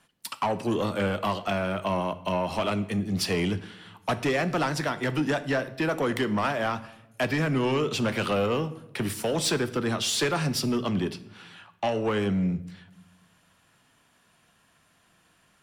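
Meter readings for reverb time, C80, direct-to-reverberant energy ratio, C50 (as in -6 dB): 0.90 s, 18.0 dB, 12.0 dB, 15.5 dB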